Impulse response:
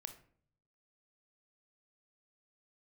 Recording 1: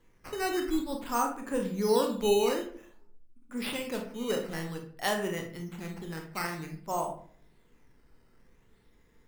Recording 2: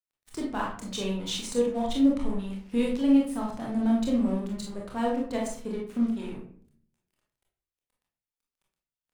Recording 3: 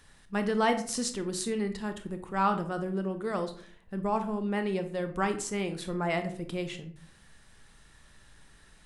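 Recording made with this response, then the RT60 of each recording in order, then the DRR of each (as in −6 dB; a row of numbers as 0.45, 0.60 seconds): 3; 0.55, 0.55, 0.55 seconds; 3.0, −2.5, 8.0 decibels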